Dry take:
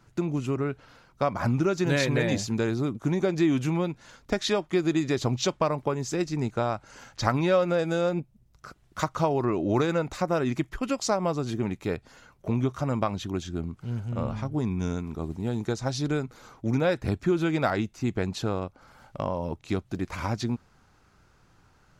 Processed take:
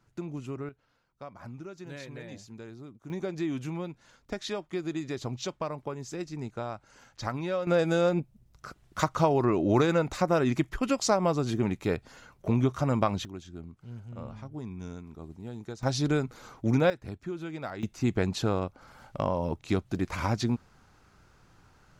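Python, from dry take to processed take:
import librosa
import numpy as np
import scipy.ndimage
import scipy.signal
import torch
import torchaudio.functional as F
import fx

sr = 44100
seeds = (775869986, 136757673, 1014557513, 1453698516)

y = fx.gain(x, sr, db=fx.steps((0.0, -9.0), (0.69, -18.0), (3.1, -8.5), (7.67, 1.0), (13.25, -11.0), (15.83, 1.0), (16.9, -12.0), (17.83, 1.0)))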